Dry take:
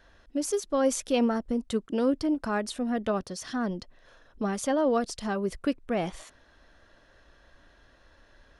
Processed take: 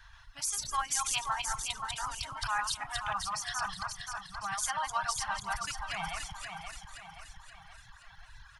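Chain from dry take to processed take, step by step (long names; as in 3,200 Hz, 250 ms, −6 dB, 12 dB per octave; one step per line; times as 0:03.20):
feedback delay that plays each chunk backwards 129 ms, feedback 43%, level −1 dB
elliptic band-stop filter 130–900 Hz, stop band 40 dB
in parallel at −2 dB: downward compressor, threshold −43 dBFS, peak gain reduction 14.5 dB
0:00.56–0:01.84: on the sum: hum with harmonics 60 Hz, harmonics 31, −55 dBFS −6 dB per octave
on a send: repeating echo 526 ms, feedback 49%, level −5 dB
on the sum: reverb reduction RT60 1.7 s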